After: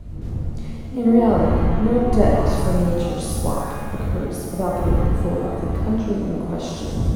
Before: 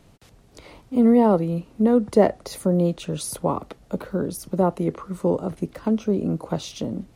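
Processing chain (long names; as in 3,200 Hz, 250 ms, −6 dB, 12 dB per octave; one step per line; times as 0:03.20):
wind on the microphone 97 Hz −24 dBFS
reverb with rising layers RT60 1.6 s, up +7 semitones, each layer −8 dB, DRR −3.5 dB
level −5 dB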